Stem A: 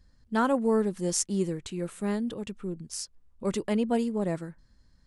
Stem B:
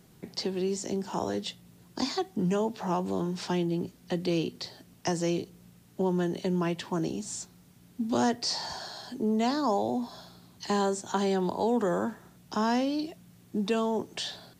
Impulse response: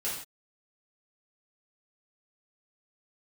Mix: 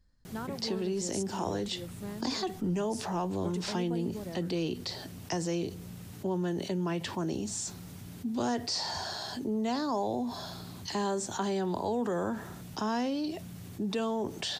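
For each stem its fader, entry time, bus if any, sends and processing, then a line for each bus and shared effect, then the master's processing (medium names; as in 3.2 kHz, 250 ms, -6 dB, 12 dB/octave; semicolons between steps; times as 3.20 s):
-8.0 dB, 0.00 s, no send, compression, threshold -28 dBFS, peak gain reduction 8.5 dB
-5.5 dB, 0.25 s, no send, peaking EQ 93 Hz +14 dB 0.21 oct; level flattener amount 50%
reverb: none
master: none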